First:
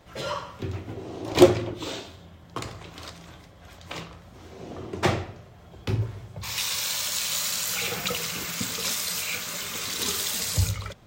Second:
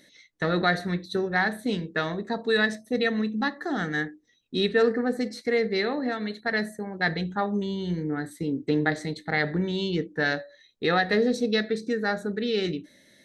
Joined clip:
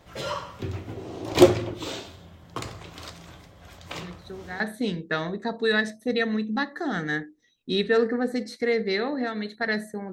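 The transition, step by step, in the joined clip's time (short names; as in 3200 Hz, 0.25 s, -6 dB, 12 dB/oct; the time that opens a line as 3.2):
first
4.02 add second from 0.87 s 0.58 s -13 dB
4.6 switch to second from 1.45 s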